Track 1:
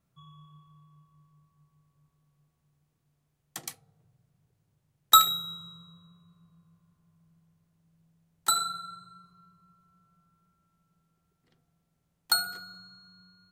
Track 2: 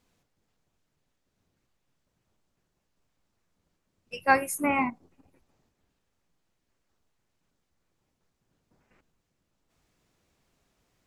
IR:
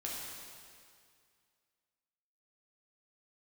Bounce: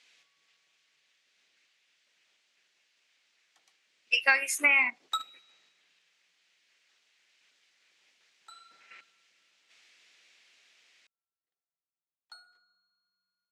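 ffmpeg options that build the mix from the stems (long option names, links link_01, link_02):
-filter_complex "[0:a]volume=-12.5dB[link_01];[1:a]highshelf=frequency=1500:width_type=q:width=1.5:gain=13,dynaudnorm=framelen=770:gausssize=7:maxgain=4.5dB,volume=2dB,asplit=2[link_02][link_03];[link_03]apad=whole_len=596022[link_04];[link_01][link_04]sidechaingate=range=-12dB:threshold=-54dB:ratio=16:detection=peak[link_05];[link_05][link_02]amix=inputs=2:normalize=0,highpass=550,lowpass=5200,acompressor=threshold=-20dB:ratio=6"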